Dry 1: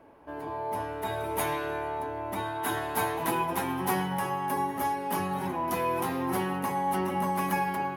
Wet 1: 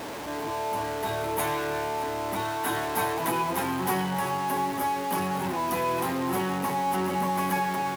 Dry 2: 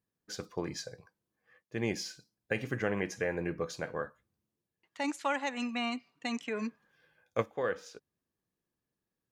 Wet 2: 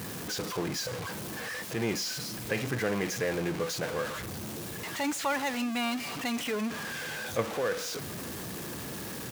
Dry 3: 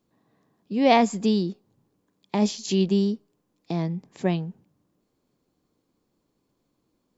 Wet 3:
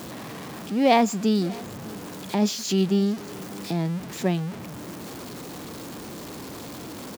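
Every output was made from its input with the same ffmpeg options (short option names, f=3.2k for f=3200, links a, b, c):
-af "aeval=exprs='val(0)+0.5*0.0316*sgn(val(0))':c=same,highpass=73,aecho=1:1:599:0.075,volume=-1dB"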